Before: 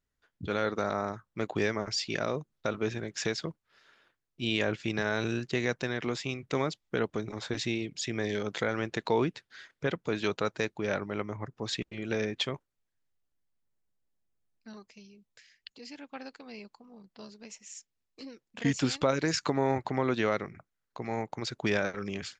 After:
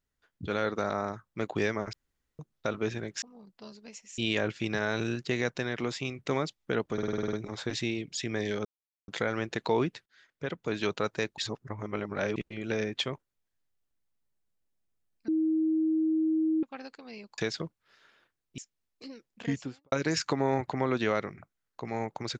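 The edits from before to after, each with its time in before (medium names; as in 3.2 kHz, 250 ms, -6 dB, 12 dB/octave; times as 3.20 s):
1.93–2.39 s: room tone
3.22–4.42 s: swap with 16.79–17.75 s
7.17 s: stutter 0.05 s, 9 plays
8.49 s: insert silence 0.43 s
9.47–10.19 s: fade in, from -19.5 dB
10.79–11.77 s: reverse
14.69–16.04 s: bleep 317 Hz -23.5 dBFS
18.44–19.09 s: studio fade out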